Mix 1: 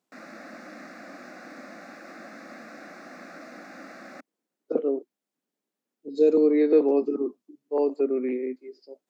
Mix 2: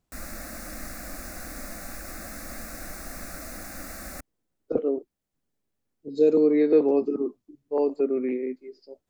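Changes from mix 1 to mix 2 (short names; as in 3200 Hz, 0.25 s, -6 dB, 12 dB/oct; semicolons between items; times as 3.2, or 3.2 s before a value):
background: remove air absorption 210 m; master: remove HPF 210 Hz 24 dB/oct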